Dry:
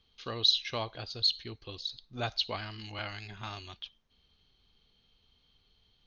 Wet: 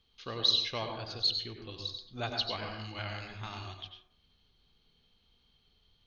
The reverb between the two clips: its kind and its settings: plate-style reverb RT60 0.63 s, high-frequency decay 0.4×, pre-delay 80 ms, DRR 3 dB; gain -2 dB

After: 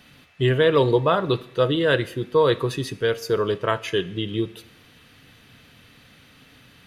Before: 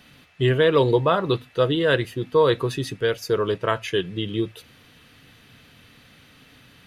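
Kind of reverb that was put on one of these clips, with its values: Schroeder reverb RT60 0.78 s, combs from 27 ms, DRR 17 dB

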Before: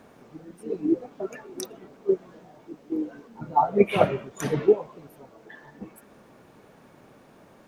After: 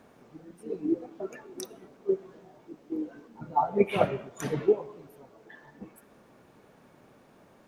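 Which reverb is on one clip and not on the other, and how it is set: plate-style reverb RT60 1.4 s, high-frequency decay 0.55×, DRR 19.5 dB; gain -4.5 dB

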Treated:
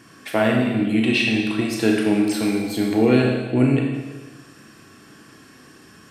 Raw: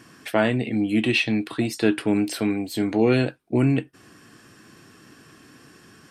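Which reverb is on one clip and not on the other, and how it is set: Schroeder reverb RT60 1.3 s, combs from 28 ms, DRR 0 dB

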